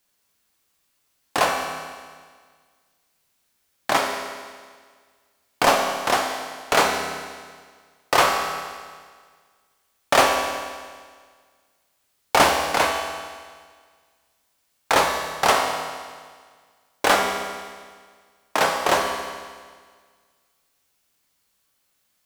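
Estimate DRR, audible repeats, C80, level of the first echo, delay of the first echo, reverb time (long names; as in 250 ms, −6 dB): 1.0 dB, no echo audible, 5.0 dB, no echo audible, no echo audible, 1.7 s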